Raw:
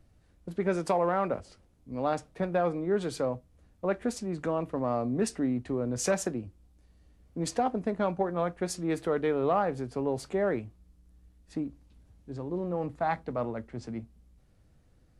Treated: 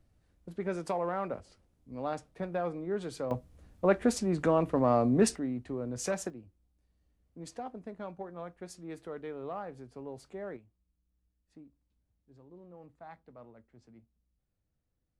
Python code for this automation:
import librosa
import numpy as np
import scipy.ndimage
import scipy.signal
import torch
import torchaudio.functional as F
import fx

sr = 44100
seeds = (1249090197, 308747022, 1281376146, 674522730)

y = fx.gain(x, sr, db=fx.steps((0.0, -6.0), (3.31, 4.0), (5.36, -5.5), (6.3, -13.0), (10.57, -20.0)))